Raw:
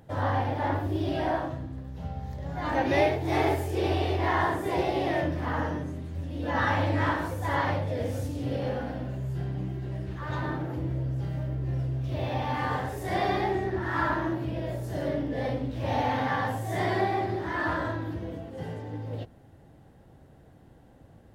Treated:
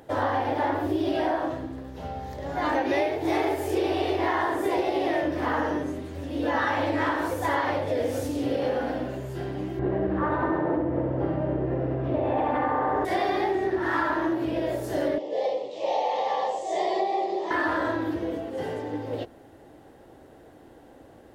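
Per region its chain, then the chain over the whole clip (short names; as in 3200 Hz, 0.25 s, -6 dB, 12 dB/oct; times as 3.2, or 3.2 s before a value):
9.79–13.05 LPF 1300 Hz + flutter echo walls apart 11.5 m, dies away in 1.2 s + fast leveller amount 100%
15.18–17.51 Chebyshev band-pass 190–7500 Hz, order 4 + fixed phaser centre 630 Hz, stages 4
whole clip: resonant low shelf 230 Hz -10 dB, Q 1.5; compressor, threshold -29 dBFS; gain +7 dB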